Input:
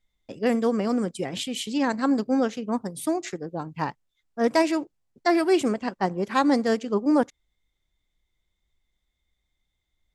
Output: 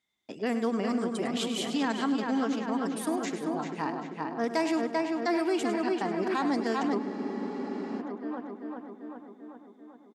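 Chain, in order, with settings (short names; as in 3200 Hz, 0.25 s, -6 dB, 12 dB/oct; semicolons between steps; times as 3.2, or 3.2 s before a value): bell 530 Hz -9.5 dB 0.24 oct; on a send: darkening echo 0.391 s, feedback 62%, low-pass 3700 Hz, level -5 dB; on the sum: limiter -17 dBFS, peak gain reduction 7 dB; high shelf 11000 Hz -6.5 dB; feedback echo 0.102 s, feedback 28%, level -11 dB; in parallel at -2.5 dB: compressor, threshold -35 dBFS, peak gain reduction 14.5 dB; on the sum: HPF 220 Hz 12 dB/oct; spectral freeze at 7.01, 1.00 s; gain -4 dB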